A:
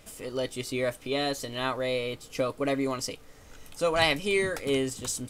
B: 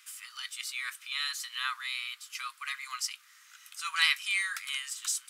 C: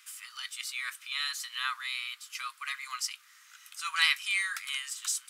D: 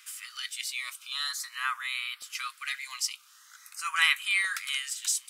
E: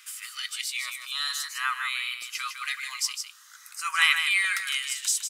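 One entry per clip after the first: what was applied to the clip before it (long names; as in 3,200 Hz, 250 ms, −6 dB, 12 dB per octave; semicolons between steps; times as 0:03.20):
Butterworth high-pass 1,200 Hz 48 dB per octave; level +1 dB
low-shelf EQ 500 Hz +5.5 dB
auto-filter notch saw up 0.45 Hz 620–7,000 Hz; level +3.5 dB
single-tap delay 156 ms −7 dB; level +2.5 dB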